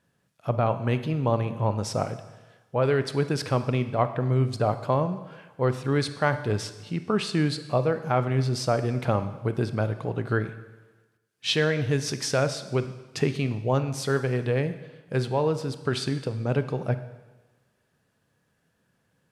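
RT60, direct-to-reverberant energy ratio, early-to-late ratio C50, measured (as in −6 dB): 1.2 s, 10.5 dB, 12.0 dB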